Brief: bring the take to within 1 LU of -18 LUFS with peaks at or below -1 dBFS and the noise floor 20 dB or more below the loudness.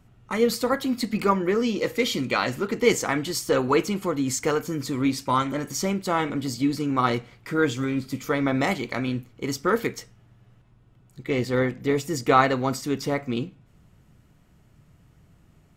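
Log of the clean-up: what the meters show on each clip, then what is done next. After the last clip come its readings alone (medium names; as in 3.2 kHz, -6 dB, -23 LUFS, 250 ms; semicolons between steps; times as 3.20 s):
loudness -25.0 LUFS; peak level -5.5 dBFS; loudness target -18.0 LUFS
-> trim +7 dB; peak limiter -1 dBFS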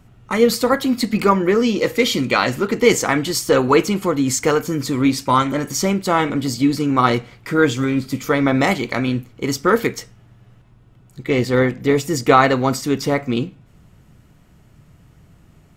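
loudness -18.0 LUFS; peak level -1.0 dBFS; noise floor -51 dBFS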